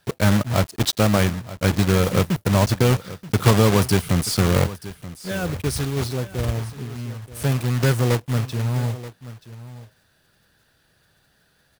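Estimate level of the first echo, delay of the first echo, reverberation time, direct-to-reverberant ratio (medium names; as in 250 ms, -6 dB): -16.0 dB, 930 ms, no reverb, no reverb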